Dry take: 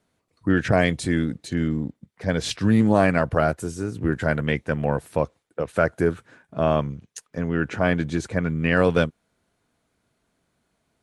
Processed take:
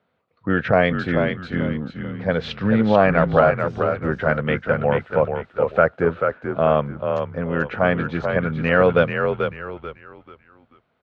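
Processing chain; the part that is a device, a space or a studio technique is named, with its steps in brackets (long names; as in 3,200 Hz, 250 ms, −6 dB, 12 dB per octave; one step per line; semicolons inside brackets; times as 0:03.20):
frequency-shifting delay pedal into a guitar cabinet (echo with shifted repeats 437 ms, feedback 33%, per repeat −49 Hz, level −5.5 dB; loudspeaker in its box 93–3,500 Hz, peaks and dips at 120 Hz −3 dB, 310 Hz −7 dB, 510 Hz +6 dB, 770 Hz +3 dB, 1,300 Hz +6 dB)
level +1 dB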